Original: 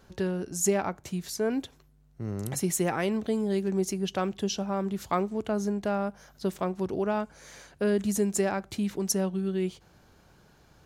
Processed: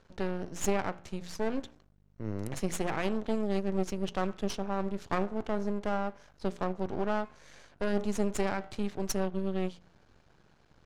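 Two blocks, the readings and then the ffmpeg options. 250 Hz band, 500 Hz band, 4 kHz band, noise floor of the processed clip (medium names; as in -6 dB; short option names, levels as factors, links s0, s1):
-4.5 dB, -4.0 dB, -5.0 dB, -64 dBFS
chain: -af "bandreject=f=59.01:t=h:w=4,bandreject=f=118.02:t=h:w=4,bandreject=f=177.03:t=h:w=4,bandreject=f=236.04:t=h:w=4,bandreject=f=295.05:t=h:w=4,bandreject=f=354.06:t=h:w=4,bandreject=f=413.07:t=h:w=4,bandreject=f=472.08:t=h:w=4,bandreject=f=531.09:t=h:w=4,bandreject=f=590.1:t=h:w=4,bandreject=f=649.11:t=h:w=4,bandreject=f=708.12:t=h:w=4,bandreject=f=767.13:t=h:w=4,bandreject=f=826.14:t=h:w=4,bandreject=f=885.15:t=h:w=4,bandreject=f=944.16:t=h:w=4,bandreject=f=1003.17:t=h:w=4,bandreject=f=1062.18:t=h:w=4,bandreject=f=1121.19:t=h:w=4,bandreject=f=1180.2:t=h:w=4,bandreject=f=1239.21:t=h:w=4,bandreject=f=1298.22:t=h:w=4,bandreject=f=1357.23:t=h:w=4,bandreject=f=1416.24:t=h:w=4,bandreject=f=1475.25:t=h:w=4,bandreject=f=1534.26:t=h:w=4,bandreject=f=1593.27:t=h:w=4,aeval=exprs='max(val(0),0)':c=same,adynamicsmooth=sensitivity=4:basefreq=6400"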